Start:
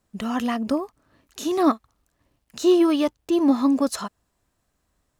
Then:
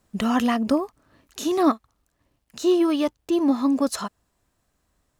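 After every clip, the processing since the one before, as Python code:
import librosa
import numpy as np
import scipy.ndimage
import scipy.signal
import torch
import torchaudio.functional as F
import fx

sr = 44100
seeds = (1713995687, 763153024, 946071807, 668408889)

y = fx.rider(x, sr, range_db=10, speed_s=0.5)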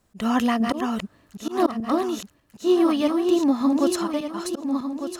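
y = fx.reverse_delay_fb(x, sr, ms=601, feedback_pct=55, wet_db=-4.0)
y = fx.auto_swell(y, sr, attack_ms=133.0)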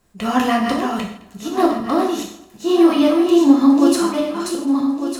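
y = fx.echo_feedback(x, sr, ms=213, feedback_pct=34, wet_db=-21.5)
y = fx.rev_gated(y, sr, seeds[0], gate_ms=190, shape='falling', drr_db=-1.5)
y = F.gain(torch.from_numpy(y), 2.5).numpy()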